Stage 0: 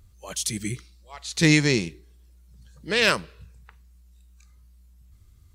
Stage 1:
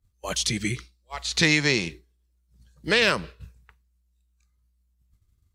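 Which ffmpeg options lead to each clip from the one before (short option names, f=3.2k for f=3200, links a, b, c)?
-filter_complex "[0:a]acrossover=split=560|5900[a][b][c];[a]acompressor=threshold=-34dB:ratio=4[d];[b]acompressor=threshold=-26dB:ratio=4[e];[c]acompressor=threshold=-50dB:ratio=4[f];[d][e][f]amix=inputs=3:normalize=0,agate=range=-33dB:threshold=-40dB:ratio=3:detection=peak,volume=7.5dB"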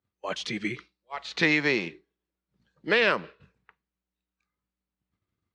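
-af "highpass=240,lowpass=2.6k"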